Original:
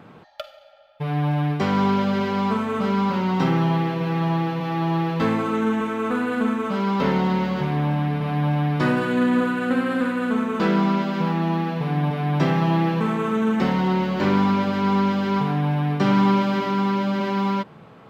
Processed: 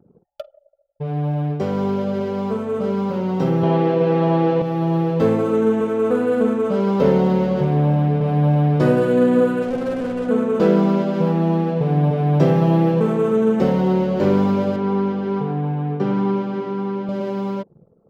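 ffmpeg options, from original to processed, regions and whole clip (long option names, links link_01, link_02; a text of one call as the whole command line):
ffmpeg -i in.wav -filter_complex "[0:a]asettb=1/sr,asplit=3[link_01][link_02][link_03];[link_01]atrim=end=3.634[link_04];[link_02]atrim=start=3.63:end=4.62,asetpts=PTS-STARTPTS,afade=type=in:duration=0.004:curve=qsin,afade=type=out:start_time=0.986:duration=0.004:curve=qsin,acontrast=67,highpass=230,lowpass=4500[link_05];[link_03]atrim=start=4.616[link_06];[link_04][link_05]acrossfade=duration=0.004:curve1=hsin:curve2=qsin[link_07];[link_07][link_06]acrossfade=duration=0.004:curve1=qsin:curve2=hsin,asettb=1/sr,asplit=3[link_08][link_09][link_10];[link_08]atrim=end=9.624[link_11];[link_09]atrim=start=9.62:end=10.29,asetpts=PTS-STARTPTS,afade=type=in:duration=0.004:curve=qsin,afade=type=out:start_time=0.666:duration=0.004:curve=qsin,asubboost=boost=7.5:cutoff=190,asoftclip=type=hard:threshold=-25.5dB[link_12];[link_10]atrim=start=10.286[link_13];[link_11][link_12]acrossfade=duration=0.004:curve1=hsin:curve2=qsin[link_14];[link_14][link_13]acrossfade=duration=0.004:curve1=qsin:curve2=hsin,asettb=1/sr,asplit=3[link_15][link_16][link_17];[link_15]atrim=end=14.764[link_18];[link_16]atrim=start=14.76:end=17.09,asetpts=PTS-STARTPTS,afade=type=in:duration=0.004:curve=qsin,afade=type=out:start_time=2.326:duration=0.004:curve=qsin,highpass=frequency=180:poles=1,aemphasis=mode=reproduction:type=75fm,bandreject=frequency=600:width=6.2[link_19];[link_17]atrim=start=17.086[link_20];[link_18][link_19]acrossfade=duration=0.004:curve1=hsin:curve2=qsin[link_21];[link_21][link_20]acrossfade=duration=0.004:curve1=qsin:curve2=hsin,anlmdn=0.631,equalizer=frequency=125:width_type=o:width=1:gain=4,equalizer=frequency=250:width_type=o:width=1:gain=-3,equalizer=frequency=500:width_type=o:width=1:gain=10,equalizer=frequency=1000:width_type=o:width=1:gain=-6,equalizer=frequency=2000:width_type=o:width=1:gain=-7,equalizer=frequency=4000:width_type=o:width=1:gain=-6,dynaudnorm=framelen=920:gausssize=9:maxgain=11.5dB,volume=-2.5dB" out.wav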